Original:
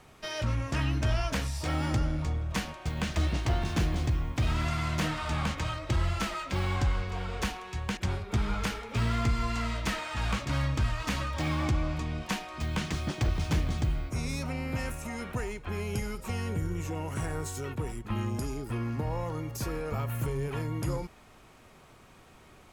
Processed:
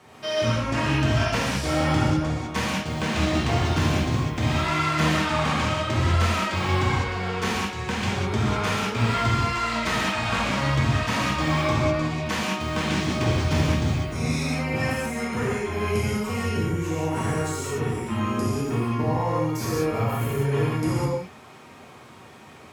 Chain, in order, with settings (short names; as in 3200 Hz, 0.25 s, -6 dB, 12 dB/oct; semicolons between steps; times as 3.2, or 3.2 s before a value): HPF 93 Hz 24 dB/oct; high shelf 6800 Hz -6 dB; non-linear reverb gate 0.23 s flat, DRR -7 dB; gain +2.5 dB